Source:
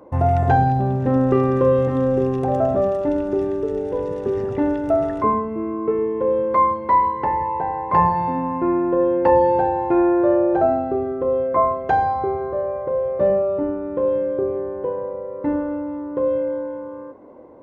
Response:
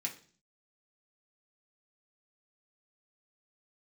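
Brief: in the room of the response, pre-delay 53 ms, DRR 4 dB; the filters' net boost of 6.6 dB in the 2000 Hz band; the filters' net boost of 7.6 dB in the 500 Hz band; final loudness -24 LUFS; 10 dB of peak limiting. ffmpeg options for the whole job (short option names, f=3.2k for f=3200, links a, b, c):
-filter_complex "[0:a]equalizer=f=500:t=o:g=8.5,equalizer=f=2k:t=o:g=8,alimiter=limit=-8.5dB:level=0:latency=1,asplit=2[a][b];[1:a]atrim=start_sample=2205,adelay=53[c];[b][c]afir=irnorm=-1:irlink=0,volume=-5dB[d];[a][d]amix=inputs=2:normalize=0,volume=-7dB"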